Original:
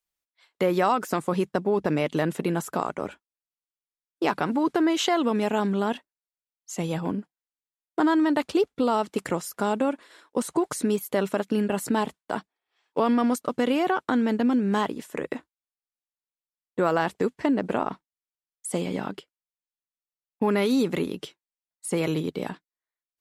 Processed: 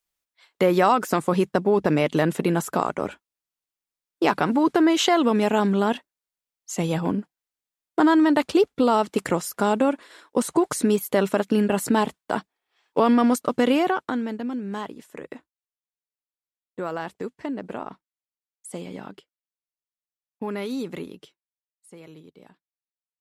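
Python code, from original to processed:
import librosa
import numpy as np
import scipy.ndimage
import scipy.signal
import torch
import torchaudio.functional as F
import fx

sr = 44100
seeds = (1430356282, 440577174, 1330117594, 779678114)

y = fx.gain(x, sr, db=fx.line((13.75, 4.0), (14.38, -7.0), (20.99, -7.0), (21.87, -19.5)))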